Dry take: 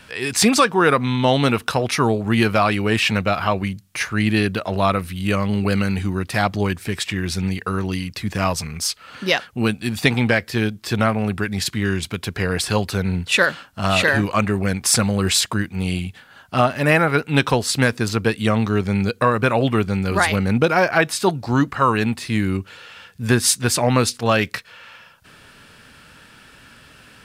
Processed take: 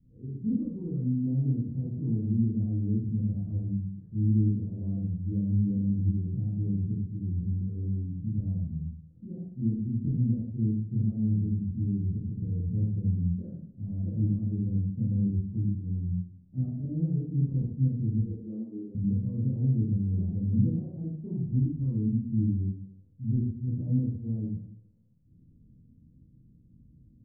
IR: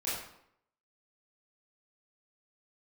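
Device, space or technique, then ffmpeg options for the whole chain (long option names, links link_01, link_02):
club heard from the street: -filter_complex "[0:a]asettb=1/sr,asplit=3[link_01][link_02][link_03];[link_01]atrim=end=18.224[link_04];[link_02]atrim=start=18.22:end=18.95,asetpts=PTS-STARTPTS,afade=type=in:duration=0.004:curve=qsin,afade=type=out:start_time=0.726:duration=0.004:curve=qsin,highpass=frequency=300:width=0.5412,highpass=frequency=300:width=1.3066[link_05];[link_03]atrim=start=18.946[link_06];[link_04][link_05]acrossfade=duration=0.004:curve1=hsin:curve2=qsin[link_07];[link_07][link_06]acrossfade=duration=0.004:curve1=qsin:curve2=hsin,alimiter=limit=-9dB:level=0:latency=1:release=71,lowpass=frequency=220:width=0.5412,lowpass=frequency=220:width=1.3066[link_08];[1:a]atrim=start_sample=2205[link_09];[link_08][link_09]afir=irnorm=-1:irlink=0,volume=-6dB"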